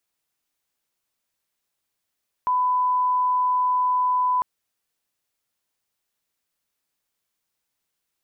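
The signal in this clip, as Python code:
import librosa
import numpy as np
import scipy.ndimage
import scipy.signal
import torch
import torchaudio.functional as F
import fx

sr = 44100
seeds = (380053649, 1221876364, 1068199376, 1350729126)

y = fx.lineup_tone(sr, length_s=1.95, level_db=-18.0)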